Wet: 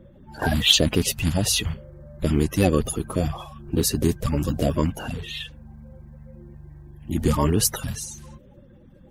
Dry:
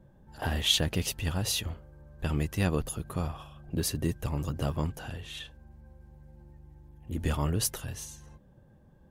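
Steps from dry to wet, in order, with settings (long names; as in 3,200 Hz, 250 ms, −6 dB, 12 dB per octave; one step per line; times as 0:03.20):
spectral magnitudes quantised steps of 30 dB
level +9 dB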